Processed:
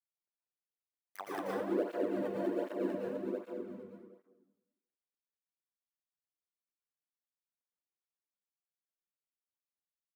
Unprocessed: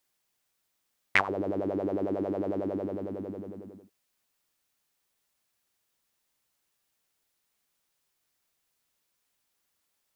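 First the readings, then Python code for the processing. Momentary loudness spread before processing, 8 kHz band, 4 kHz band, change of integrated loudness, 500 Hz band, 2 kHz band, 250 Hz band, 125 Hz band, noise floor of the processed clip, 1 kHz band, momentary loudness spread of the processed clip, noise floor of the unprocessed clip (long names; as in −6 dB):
15 LU, can't be measured, below −10 dB, −6.0 dB, −3.0 dB, −16.5 dB, −5.0 dB, −10.0 dB, below −85 dBFS, −7.0 dB, 15 LU, −78 dBFS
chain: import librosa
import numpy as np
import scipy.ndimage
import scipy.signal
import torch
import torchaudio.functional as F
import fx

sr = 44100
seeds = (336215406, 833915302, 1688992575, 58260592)

p1 = fx.dead_time(x, sr, dead_ms=0.21)
p2 = fx.high_shelf(p1, sr, hz=3800.0, db=-11.0)
p3 = p2 + fx.echo_feedback(p2, sr, ms=192, feedback_pct=16, wet_db=-4.0, dry=0)
p4 = fx.chopper(p3, sr, hz=4.5, depth_pct=60, duty_pct=25)
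p5 = scipy.signal.sosfilt(scipy.signal.butter(4, 160.0, 'highpass', fs=sr, output='sos'), p4)
p6 = fx.peak_eq(p5, sr, hz=4800.0, db=-7.0, octaves=2.0)
p7 = fx.rev_plate(p6, sr, seeds[0], rt60_s=0.97, hf_ratio=0.5, predelay_ms=105, drr_db=-4.5)
p8 = fx.flanger_cancel(p7, sr, hz=1.3, depth_ms=3.4)
y = p8 * librosa.db_to_amplitude(-2.0)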